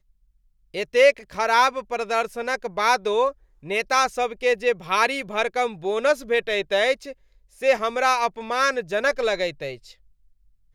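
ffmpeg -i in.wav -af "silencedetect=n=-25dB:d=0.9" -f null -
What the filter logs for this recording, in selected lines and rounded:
silence_start: 9.71
silence_end: 10.74 | silence_duration: 1.04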